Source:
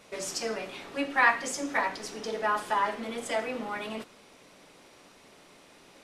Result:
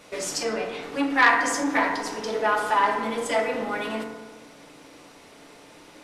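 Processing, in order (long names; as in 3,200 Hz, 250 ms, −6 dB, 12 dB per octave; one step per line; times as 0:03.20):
0:00.43–0:00.83: high-shelf EQ 9,800 Hz −11 dB
feedback delay network reverb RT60 1.4 s, low-frequency decay 0.95×, high-frequency decay 0.3×, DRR 3 dB
saturating transformer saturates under 1,500 Hz
level +4.5 dB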